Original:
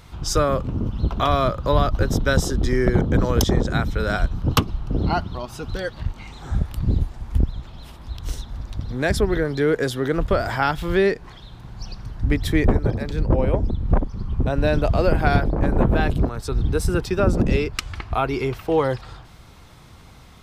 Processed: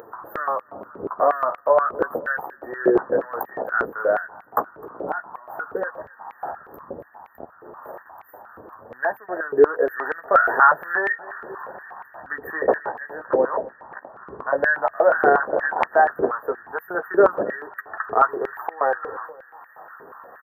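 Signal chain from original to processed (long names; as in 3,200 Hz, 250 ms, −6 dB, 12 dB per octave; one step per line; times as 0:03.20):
noise gate with hold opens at −31 dBFS
parametric band 2,600 Hz −7.5 dB 1.7 octaves, from 0:09.88 +5.5 dB
upward compression, threshold −19 dBFS
flanger 0.11 Hz, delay 8.8 ms, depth 8.2 ms, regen −18%
linear-phase brick-wall band-stop 1,900–13,000 Hz
repeating echo 259 ms, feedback 54%, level −22 dB
high-pass on a step sequencer 8.4 Hz 430–2,200 Hz
level +3 dB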